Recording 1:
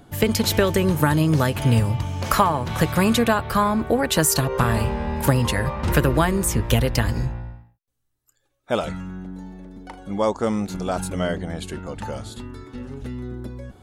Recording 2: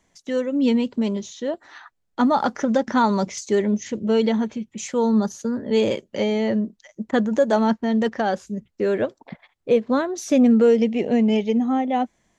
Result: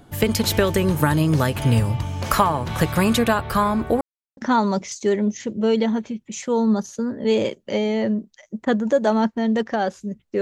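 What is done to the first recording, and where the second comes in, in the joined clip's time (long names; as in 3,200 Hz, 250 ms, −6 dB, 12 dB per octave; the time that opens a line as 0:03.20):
recording 1
0:04.01–0:04.37: silence
0:04.37: continue with recording 2 from 0:02.83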